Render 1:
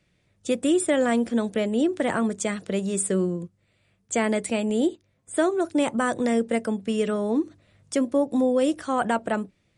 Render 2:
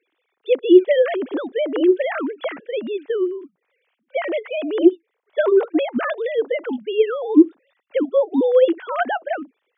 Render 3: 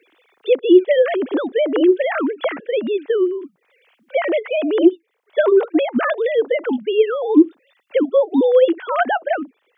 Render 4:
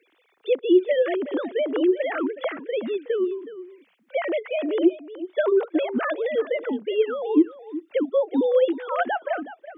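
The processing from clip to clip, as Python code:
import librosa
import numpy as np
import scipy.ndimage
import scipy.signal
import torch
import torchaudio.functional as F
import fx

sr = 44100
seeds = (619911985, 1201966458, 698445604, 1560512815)

y1 = fx.sine_speech(x, sr)
y1 = scipy.signal.sosfilt(scipy.signal.bessel(2, 260.0, 'highpass', norm='mag', fs=sr, output='sos'), y1)
y1 = y1 * librosa.db_to_amplitude(6.5)
y2 = fx.band_squash(y1, sr, depth_pct=40)
y2 = y2 * librosa.db_to_amplitude(2.5)
y3 = y2 + 10.0 ** (-14.5 / 20.0) * np.pad(y2, (int(370 * sr / 1000.0), 0))[:len(y2)]
y3 = y3 * librosa.db_to_amplitude(-6.5)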